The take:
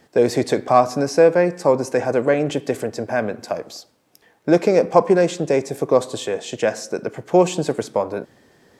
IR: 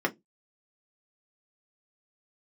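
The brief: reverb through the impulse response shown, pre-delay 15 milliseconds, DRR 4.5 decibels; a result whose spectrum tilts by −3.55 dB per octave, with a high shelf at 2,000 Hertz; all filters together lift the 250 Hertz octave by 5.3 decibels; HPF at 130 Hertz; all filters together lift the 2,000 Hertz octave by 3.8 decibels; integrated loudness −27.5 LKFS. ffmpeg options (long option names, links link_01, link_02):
-filter_complex "[0:a]highpass=130,equalizer=frequency=250:width_type=o:gain=8,highshelf=frequency=2000:gain=-3.5,equalizer=frequency=2000:width_type=o:gain=7,asplit=2[link_01][link_02];[1:a]atrim=start_sample=2205,adelay=15[link_03];[link_02][link_03]afir=irnorm=-1:irlink=0,volume=-15dB[link_04];[link_01][link_04]amix=inputs=2:normalize=0,volume=-12.5dB"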